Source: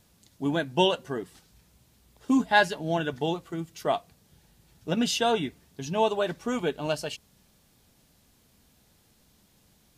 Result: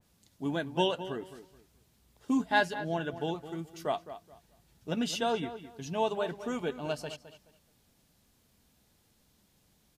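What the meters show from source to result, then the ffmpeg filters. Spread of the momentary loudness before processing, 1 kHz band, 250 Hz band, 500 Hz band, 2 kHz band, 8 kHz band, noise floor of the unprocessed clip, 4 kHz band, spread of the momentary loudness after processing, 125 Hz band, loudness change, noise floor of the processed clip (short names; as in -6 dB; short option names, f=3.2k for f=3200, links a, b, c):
15 LU, -5.5 dB, -5.0 dB, -5.5 dB, -5.5 dB, -7.0 dB, -64 dBFS, -6.5 dB, 18 LU, -5.0 dB, -5.5 dB, -69 dBFS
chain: -filter_complex "[0:a]asplit=2[a][b];[b]adelay=213,lowpass=f=3.2k:p=1,volume=-12.5dB,asplit=2[c][d];[d]adelay=213,lowpass=f=3.2k:p=1,volume=0.25,asplit=2[e][f];[f]adelay=213,lowpass=f=3.2k:p=1,volume=0.25[g];[c][e][g]amix=inputs=3:normalize=0[h];[a][h]amix=inputs=2:normalize=0,adynamicequalizer=threshold=0.01:dfrequency=2500:dqfactor=0.7:tfrequency=2500:tqfactor=0.7:attack=5:release=100:ratio=0.375:range=2.5:mode=cutabove:tftype=highshelf,volume=-5.5dB"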